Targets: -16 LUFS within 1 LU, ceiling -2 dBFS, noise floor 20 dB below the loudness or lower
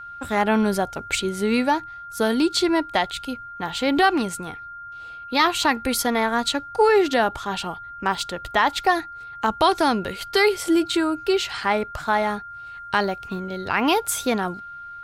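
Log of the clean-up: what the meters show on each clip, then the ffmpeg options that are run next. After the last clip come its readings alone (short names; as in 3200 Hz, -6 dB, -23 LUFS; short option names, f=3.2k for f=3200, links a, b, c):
steady tone 1400 Hz; tone level -35 dBFS; loudness -22.5 LUFS; peak -7.5 dBFS; loudness target -16.0 LUFS
-> -af "bandreject=f=1.4k:w=30"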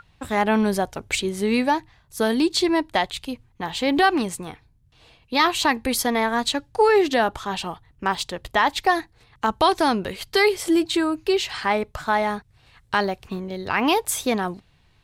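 steady tone none; loudness -22.5 LUFS; peak -7.5 dBFS; loudness target -16.0 LUFS
-> -af "volume=6.5dB,alimiter=limit=-2dB:level=0:latency=1"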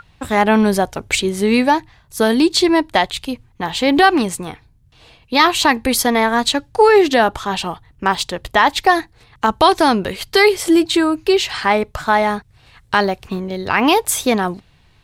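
loudness -16.0 LUFS; peak -2.0 dBFS; noise floor -53 dBFS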